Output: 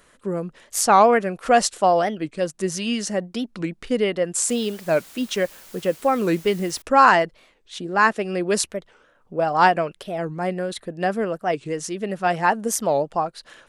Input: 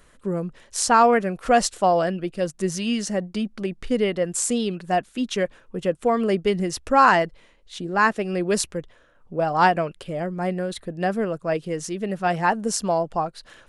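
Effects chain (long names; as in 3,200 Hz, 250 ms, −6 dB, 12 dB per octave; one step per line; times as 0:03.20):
low-shelf EQ 130 Hz −11.5 dB
0:04.48–0:06.82: bit-depth reduction 8 bits, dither triangular
wow of a warped record 45 rpm, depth 250 cents
level +2 dB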